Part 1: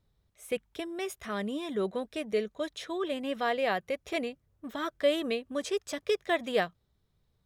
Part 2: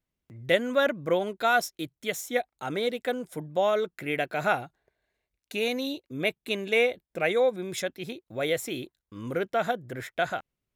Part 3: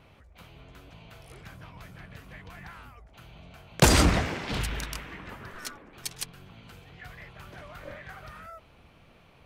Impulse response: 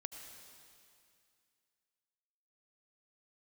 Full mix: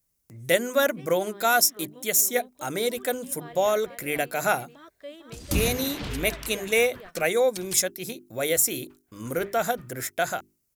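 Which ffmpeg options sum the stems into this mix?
-filter_complex "[0:a]volume=-15.5dB,asplit=2[a][b];[b]volume=-4dB[c];[1:a]bandreject=f=50:t=h:w=6,bandreject=f=100:t=h:w=6,bandreject=f=150:t=h:w=6,bandreject=f=200:t=h:w=6,bandreject=f=250:t=h:w=6,bandreject=f=300:t=h:w=6,bandreject=f=350:t=h:w=6,bandreject=f=400:t=h:w=6,aexciter=amount=5.3:drive=5.4:freq=4.9k,volume=1.5dB,asplit=2[d][e];[2:a]agate=range=-36dB:threshold=-42dB:ratio=16:detection=peak,acrossover=split=420|3000[f][g][h];[g]acompressor=threshold=-35dB:ratio=6[i];[f][i][h]amix=inputs=3:normalize=0,adelay=1500,volume=-2.5dB[j];[e]apad=whole_len=483147[k];[j][k]sidechaingate=range=-20dB:threshold=-47dB:ratio=16:detection=peak[l];[c]aecho=0:1:451:1[m];[a][d][l][m]amix=inputs=4:normalize=0"

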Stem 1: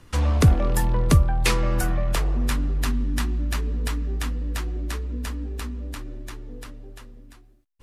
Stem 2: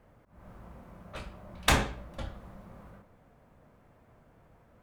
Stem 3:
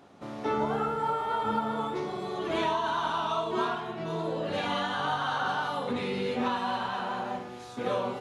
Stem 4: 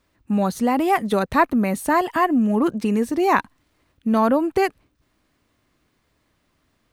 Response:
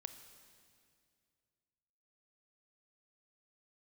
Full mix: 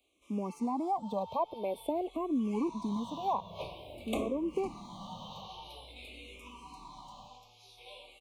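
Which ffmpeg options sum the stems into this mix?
-filter_complex "[0:a]acompressor=threshold=-22dB:ratio=6,adelay=800,volume=-19.5dB[a];[1:a]acontrast=33,adelay=2450,volume=0.5dB[b];[2:a]highpass=1.5k,highshelf=f=5.4k:g=5.5,flanger=delay=16.5:depth=2.5:speed=1.6,volume=-3.5dB[c];[3:a]equalizer=f=580:t=o:w=3:g=13,volume=-18dB,asplit=2[d][e];[e]apad=whole_len=380272[f];[a][f]sidechaincompress=threshold=-40dB:ratio=8:attack=16:release=725[g];[g][b][c][d]amix=inputs=4:normalize=0,acrossover=split=140|1300[h][i][j];[h]acompressor=threshold=-56dB:ratio=4[k];[i]acompressor=threshold=-26dB:ratio=4[l];[j]acompressor=threshold=-45dB:ratio=4[m];[k][l][m]amix=inputs=3:normalize=0,asuperstop=centerf=1600:order=12:qfactor=1.5,asplit=2[n][o];[o]afreqshift=-0.49[p];[n][p]amix=inputs=2:normalize=1"

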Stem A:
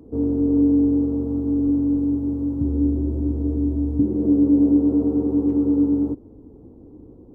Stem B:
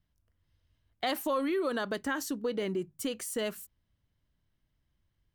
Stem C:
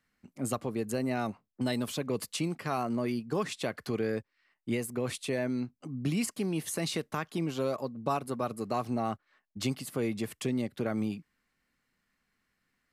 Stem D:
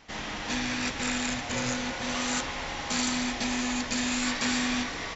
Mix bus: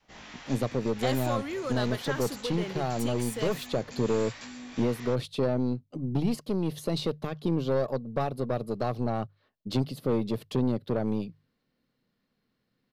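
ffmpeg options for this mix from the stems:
-filter_complex "[1:a]acontrast=36,volume=-7dB[a];[2:a]equalizer=f=125:t=o:w=1:g=10,equalizer=f=250:t=o:w=1:g=6,equalizer=f=500:t=o:w=1:g=10,equalizer=f=2k:t=o:w=1:g=-6,equalizer=f=4k:t=o:w=1:g=9,equalizer=f=8k:t=o:w=1:g=-11,aeval=exprs='(tanh(7.94*val(0)+0.5)-tanh(0.5))/7.94':c=same,adelay=100,volume=-1dB[b];[3:a]acrossover=split=760[c][d];[c]aeval=exprs='val(0)*(1-0.5/2+0.5/2*cos(2*PI*1.3*n/s))':c=same[e];[d]aeval=exprs='val(0)*(1-0.5/2-0.5/2*cos(2*PI*1.3*n/s))':c=same[f];[e][f]amix=inputs=2:normalize=0,volume=-6dB,flanger=delay=15.5:depth=5.7:speed=1.1,acompressor=threshold=-40dB:ratio=6,volume=0dB[g];[a][b][g]amix=inputs=3:normalize=0,bandreject=f=50:t=h:w=6,bandreject=f=100:t=h:w=6,bandreject=f=150:t=h:w=6,adynamicequalizer=threshold=0.0112:dfrequency=260:dqfactor=1.4:tfrequency=260:tqfactor=1.4:attack=5:release=100:ratio=0.375:range=3:mode=cutabove:tftype=bell"

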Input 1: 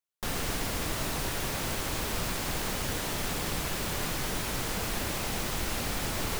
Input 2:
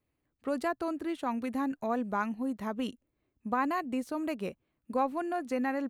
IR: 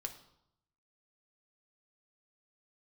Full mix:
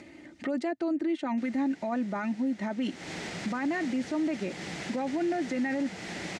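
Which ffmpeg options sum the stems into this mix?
-filter_complex "[0:a]adelay=1150,volume=-11dB,afade=t=in:st=2.79:d=0.39:silence=0.281838[a];[1:a]aecho=1:1:3.3:0.64,volume=1dB[b];[a][b]amix=inputs=2:normalize=0,acompressor=mode=upward:threshold=-29dB:ratio=2.5,highpass=140,equalizer=f=180:t=q:w=4:g=9,equalizer=f=330:t=q:w=4:g=6,equalizer=f=750:t=q:w=4:g=4,equalizer=f=1.1k:t=q:w=4:g=-8,equalizer=f=2k:t=q:w=4:g=9,lowpass=f=7.3k:w=0.5412,lowpass=f=7.3k:w=1.3066,alimiter=limit=-23dB:level=0:latency=1:release=16"

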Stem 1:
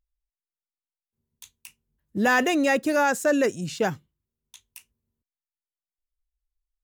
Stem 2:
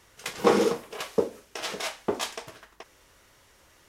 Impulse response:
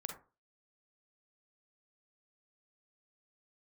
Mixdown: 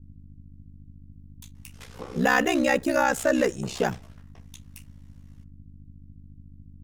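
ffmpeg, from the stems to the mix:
-filter_complex "[0:a]aeval=exprs='val(0)+0.00158*(sin(2*PI*60*n/s)+sin(2*PI*2*60*n/s)/2+sin(2*PI*3*60*n/s)/3+sin(2*PI*4*60*n/s)/4+sin(2*PI*5*60*n/s)/5)':c=same,volume=1.5dB,asplit=2[a][b];[b]volume=-19.5dB[c];[1:a]flanger=delay=17:depth=4.5:speed=1.6,acompressor=threshold=-28dB:ratio=6,adelay=1550,volume=-8dB,asplit=2[d][e];[e]volume=-6dB[f];[2:a]atrim=start_sample=2205[g];[c][f]amix=inputs=2:normalize=0[h];[h][g]afir=irnorm=-1:irlink=0[i];[a][d][i]amix=inputs=3:normalize=0,aeval=exprs='val(0)+0.00794*(sin(2*PI*50*n/s)+sin(2*PI*2*50*n/s)/2+sin(2*PI*3*50*n/s)/3+sin(2*PI*4*50*n/s)/4+sin(2*PI*5*50*n/s)/5)':c=same,aeval=exprs='val(0)*sin(2*PI*32*n/s)':c=same"

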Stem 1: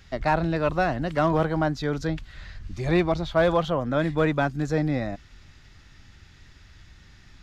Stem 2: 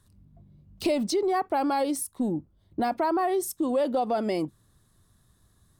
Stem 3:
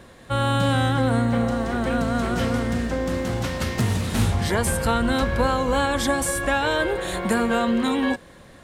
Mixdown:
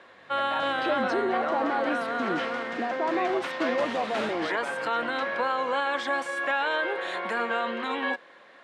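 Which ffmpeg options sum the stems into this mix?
-filter_complex "[0:a]adelay=250,volume=-3.5dB[a];[1:a]alimiter=limit=-23dB:level=0:latency=1,volume=1dB[b];[2:a]volume=2.5dB[c];[a][c]amix=inputs=2:normalize=0,highpass=f=1.1k:p=1,alimiter=limit=-17dB:level=0:latency=1:release=24,volume=0dB[d];[b][d]amix=inputs=2:normalize=0,highpass=280,lowpass=2.6k"

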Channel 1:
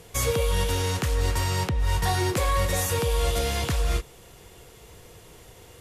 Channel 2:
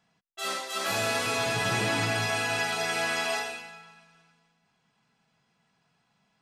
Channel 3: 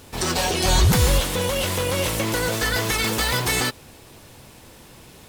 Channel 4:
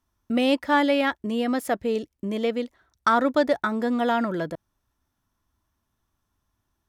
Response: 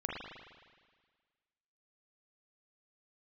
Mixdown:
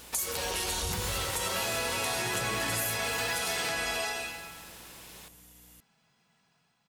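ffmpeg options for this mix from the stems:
-filter_complex "[0:a]aemphasis=mode=production:type=bsi,afwtdn=0.0316,aeval=exprs='val(0)+0.00447*(sin(2*PI*60*n/s)+sin(2*PI*2*60*n/s)/2+sin(2*PI*3*60*n/s)/3+sin(2*PI*4*60*n/s)/4+sin(2*PI*5*60*n/s)/5)':c=same,volume=3dB,asplit=2[a][b];[b]volume=-14dB[c];[1:a]aemphasis=mode=production:type=75fm,dynaudnorm=f=110:g=11:m=5dB,highshelf=f=5.5k:g=-10.5,adelay=700,volume=-4dB[d];[2:a]volume=-1dB,asplit=2[e][f];[f]volume=-18.5dB[g];[a][e]amix=inputs=2:normalize=0,highpass=f=960:p=1,acompressor=threshold=-30dB:ratio=6,volume=0dB[h];[4:a]atrim=start_sample=2205[i];[c][g]amix=inputs=2:normalize=0[j];[j][i]afir=irnorm=-1:irlink=0[k];[d][h][k]amix=inputs=3:normalize=0,acompressor=threshold=-29dB:ratio=4"

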